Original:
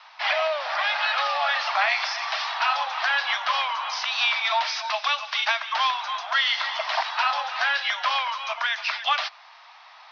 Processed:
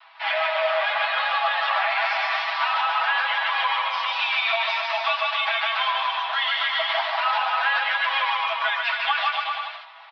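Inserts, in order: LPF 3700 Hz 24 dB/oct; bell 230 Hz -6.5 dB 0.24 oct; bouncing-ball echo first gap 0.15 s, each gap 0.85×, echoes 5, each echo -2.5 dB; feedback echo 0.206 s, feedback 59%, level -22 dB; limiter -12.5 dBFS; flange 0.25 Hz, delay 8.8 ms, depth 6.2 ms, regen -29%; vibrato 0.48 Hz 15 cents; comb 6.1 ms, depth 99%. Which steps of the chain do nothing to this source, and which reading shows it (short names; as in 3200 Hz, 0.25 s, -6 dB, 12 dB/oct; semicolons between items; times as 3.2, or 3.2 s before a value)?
bell 230 Hz: input band starts at 510 Hz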